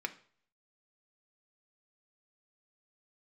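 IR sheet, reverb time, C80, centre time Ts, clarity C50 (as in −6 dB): 0.50 s, 20.5 dB, 5 ms, 16.0 dB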